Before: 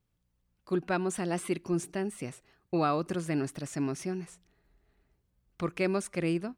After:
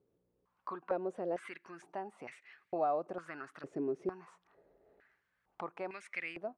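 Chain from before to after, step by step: compression 2:1, threshold -53 dBFS, peak gain reduction 16 dB; step-sequenced band-pass 2.2 Hz 420–2100 Hz; trim +17.5 dB

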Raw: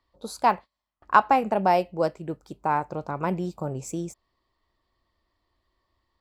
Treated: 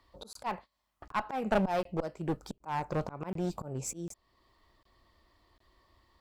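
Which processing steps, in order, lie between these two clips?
slow attack 550 ms; one-sided clip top -38 dBFS; crackling interface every 0.75 s, samples 1024, zero, from 0.33 s; trim +8 dB

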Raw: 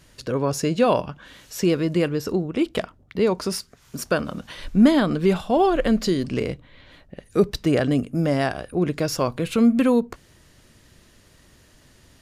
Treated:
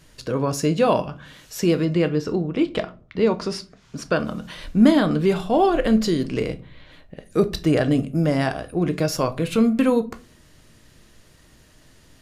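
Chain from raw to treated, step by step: 1.85–4.20 s: low-pass 5.6 kHz 12 dB/octave; simulated room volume 210 m³, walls furnished, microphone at 0.54 m

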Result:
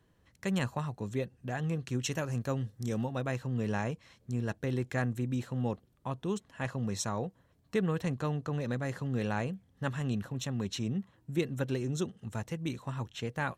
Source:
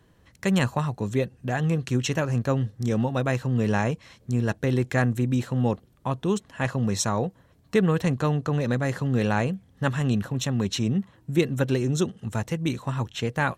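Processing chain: 2.02–3.07 s: treble shelf 6.3 kHz +9 dB; trim -9 dB

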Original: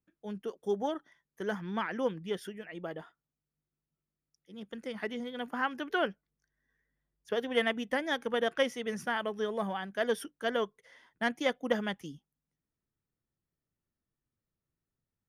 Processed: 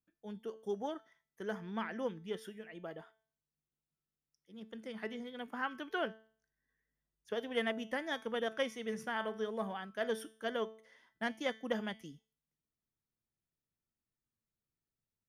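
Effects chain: feedback comb 220 Hz, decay 0.47 s, harmonics all, mix 60%; trim +1 dB

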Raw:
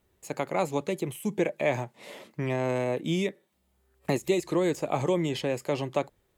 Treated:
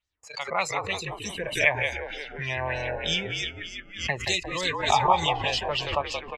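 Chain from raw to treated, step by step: spectral noise reduction 23 dB; gate -59 dBFS, range -30 dB; amplifier tone stack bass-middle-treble 10-0-10; level rider gain up to 6 dB; 2.55–2.97 s: distance through air 150 m; 4.75–5.25 s: small resonant body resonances 880/3700 Hz, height 16 dB, ringing for 25 ms; frequency-shifting echo 177 ms, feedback 58%, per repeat -50 Hz, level -4.5 dB; LFO low-pass sine 3.3 Hz 980–6100 Hz; swell ahead of each attack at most 110 dB/s; trim +5 dB

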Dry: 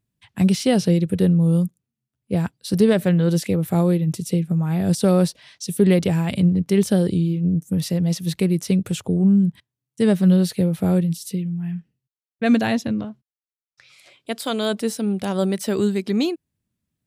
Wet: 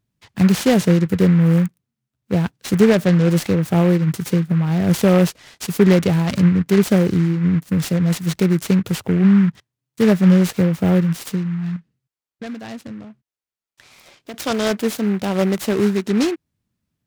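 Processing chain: 11.76–14.34 s: compression 3:1, threshold -38 dBFS, peak gain reduction 18.5 dB; delay time shaken by noise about 1.5 kHz, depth 0.054 ms; trim +3 dB

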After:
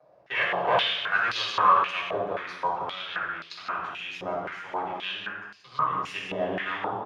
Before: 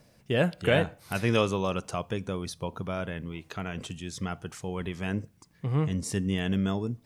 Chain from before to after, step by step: peaking EQ 1.1 kHz +8 dB 0.35 oct; echo from a far wall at 30 m, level -8 dB; half-wave rectifier; reverberation RT60 1.1 s, pre-delay 3 ms, DRR -5 dB; step-sequenced band-pass 3.8 Hz 640–4500 Hz; trim +6.5 dB

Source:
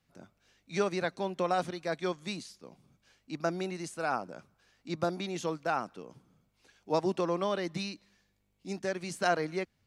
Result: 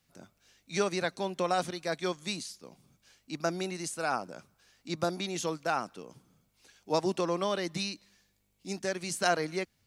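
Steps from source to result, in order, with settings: treble shelf 4.1 kHz +10 dB

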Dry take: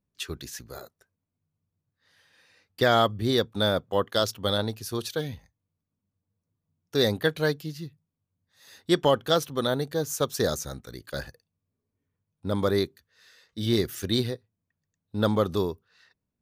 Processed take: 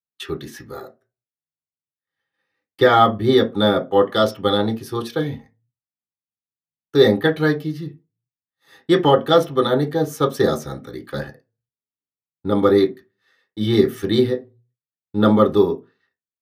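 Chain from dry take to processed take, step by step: expander -48 dBFS; reverberation RT60 0.25 s, pre-delay 3 ms, DRR 1.5 dB; trim -3 dB

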